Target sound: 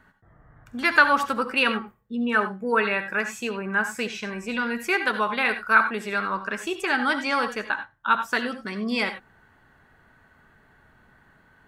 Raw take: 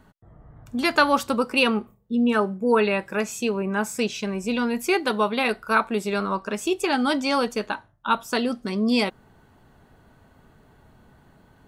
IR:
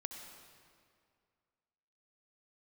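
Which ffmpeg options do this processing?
-filter_complex "[0:a]equalizer=frequency=1700:width_type=o:width=1.1:gain=14[link_01];[1:a]atrim=start_sample=2205,afade=type=out:start_time=0.15:duration=0.01,atrim=end_sample=7056[link_02];[link_01][link_02]afir=irnorm=-1:irlink=0,volume=-3dB"

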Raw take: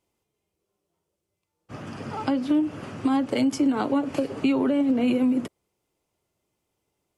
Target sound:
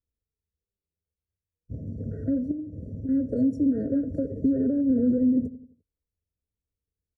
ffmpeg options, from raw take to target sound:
ffmpeg -i in.wav -filter_complex "[0:a]asuperstop=centerf=2300:order=8:qfactor=0.61,lowshelf=frequency=140:width_type=q:width=1.5:gain=13.5,aecho=1:1:4.2:0.6,asettb=1/sr,asplit=3[link_01][link_02][link_03];[link_01]atrim=end=2.514[link_04];[link_02]atrim=start=2.51:end=3.09,asetpts=PTS-STARTPTS,afade=type=in:duration=0.004:curve=qsin,afade=type=out:start_time=0.576:duration=0.004:curve=qsin,acompressor=threshold=-31dB:ratio=6[link_05];[link_03]atrim=start=3.086[link_06];[link_04][link_05]acrossfade=duration=0.004:curve1=hsin:curve2=qsin[link_07];[link_07][link_06]acrossfade=duration=0.004:curve1=qsin:curve2=hsin,firequalizer=gain_entry='entry(190,0);entry(2000,-20);entry(4800,-8)':delay=0.05:min_phase=1,afwtdn=0.0126,asplit=2[link_08][link_09];[link_09]adelay=86,lowpass=frequency=1300:poles=1,volume=-15dB,asplit=2[link_10][link_11];[link_11]adelay=86,lowpass=frequency=1300:poles=1,volume=0.47,asplit=2[link_12][link_13];[link_13]adelay=86,lowpass=frequency=1300:poles=1,volume=0.47,asplit=2[link_14][link_15];[link_15]adelay=86,lowpass=frequency=1300:poles=1,volume=0.47[link_16];[link_08][link_10][link_12][link_14][link_16]amix=inputs=5:normalize=0,afftfilt=real='re*eq(mod(floor(b*sr/1024/670),2),0)':imag='im*eq(mod(floor(b*sr/1024/670),2),0)':win_size=1024:overlap=0.75" out.wav

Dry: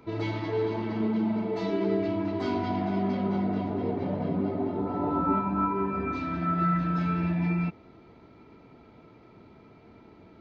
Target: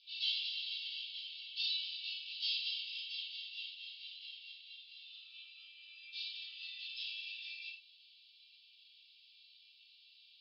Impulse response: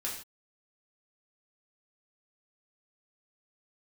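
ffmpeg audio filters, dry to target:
-filter_complex "[0:a]asuperpass=centerf=3800:order=12:qfactor=1.6[link_01];[1:a]atrim=start_sample=2205,afade=type=out:start_time=0.15:duration=0.01,atrim=end_sample=7056[link_02];[link_01][link_02]afir=irnorm=-1:irlink=0,volume=11.5dB"

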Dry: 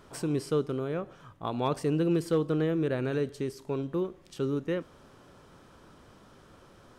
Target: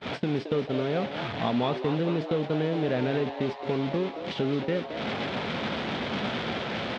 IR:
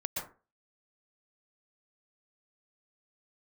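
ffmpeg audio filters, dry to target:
-filter_complex "[0:a]aeval=exprs='val(0)+0.5*0.0251*sgn(val(0))':channel_layout=same,acrusher=bits=6:mix=0:aa=0.000001,acompressor=threshold=-34dB:ratio=2.5,highpass=110,equalizer=frequency=220:width_type=q:width=4:gain=7,equalizer=frequency=330:width_type=q:width=4:gain=-4,equalizer=frequency=680:width_type=q:width=4:gain=4,equalizer=frequency=1100:width_type=q:width=4:gain=-5,equalizer=frequency=2200:width_type=q:width=4:gain=4,equalizer=frequency=3400:width_type=q:width=4:gain=5,lowpass=frequency=4000:width=0.5412,lowpass=frequency=4000:width=1.3066,agate=range=-34dB:threshold=-36dB:ratio=16:detection=peak,asplit=8[link_01][link_02][link_03][link_04][link_05][link_06][link_07][link_08];[link_02]adelay=221,afreqshift=140,volume=-10.5dB[link_09];[link_03]adelay=442,afreqshift=280,volume=-14.9dB[link_10];[link_04]adelay=663,afreqshift=420,volume=-19.4dB[link_11];[link_05]adelay=884,afreqshift=560,volume=-23.8dB[link_12];[link_06]adelay=1105,afreqshift=700,volume=-28.2dB[link_13];[link_07]adelay=1326,afreqshift=840,volume=-32.7dB[link_14];[link_08]adelay=1547,afreqshift=980,volume=-37.1dB[link_15];[link_01][link_09][link_10][link_11][link_12][link_13][link_14][link_15]amix=inputs=8:normalize=0,volume=6.5dB"

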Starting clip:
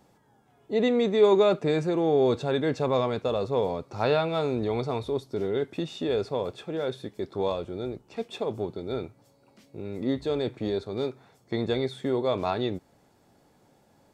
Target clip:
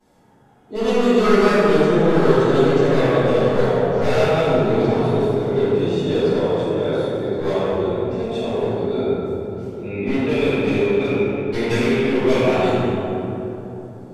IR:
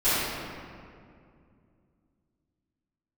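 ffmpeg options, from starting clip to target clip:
-filter_complex "[0:a]asettb=1/sr,asplit=3[link_01][link_02][link_03];[link_01]atrim=end=9.834[link_04];[link_02]atrim=start=9.83:end=12.44,asetpts=PTS-STARTPTS,afade=type=in:duration=0.004:curve=qsin,afade=type=out:start_time=2.606:duration=0.004:curve=qsin,lowpass=frequency=2500:width_type=q:width=11[link_05];[link_03]atrim=start=12.436[link_06];[link_04][link_05]acrossfade=duration=0.004:curve1=hsin:curve2=qsin[link_07];[link_07][link_06]acrossfade=duration=0.004:curve1=qsin:curve2=hsin,aeval=exprs='0.1*(abs(mod(val(0)/0.1+3,4)-2)-1)':channel_layout=same[link_08];[1:a]atrim=start_sample=2205,asetrate=27783,aresample=44100[link_09];[link_08][link_09]afir=irnorm=-1:irlink=0,volume=-10.5dB"

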